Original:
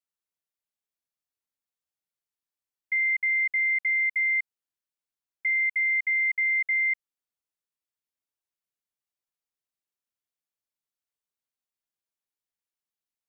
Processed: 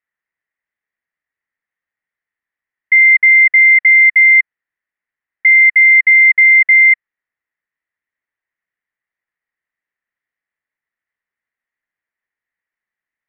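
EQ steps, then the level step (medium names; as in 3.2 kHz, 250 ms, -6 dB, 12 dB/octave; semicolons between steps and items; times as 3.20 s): resonant low-pass 1.9 kHz, resonance Q 8.5; +5.0 dB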